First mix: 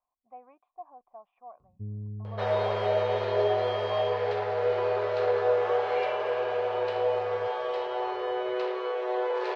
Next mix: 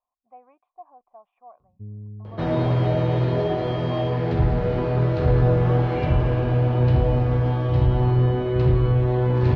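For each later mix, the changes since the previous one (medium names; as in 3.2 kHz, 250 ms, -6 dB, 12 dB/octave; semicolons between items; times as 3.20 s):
second sound: remove brick-wall FIR high-pass 380 Hz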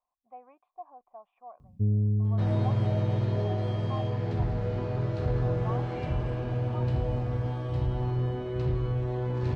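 first sound +12.0 dB; second sound -10.0 dB; master: remove low-pass 4.2 kHz 12 dB/octave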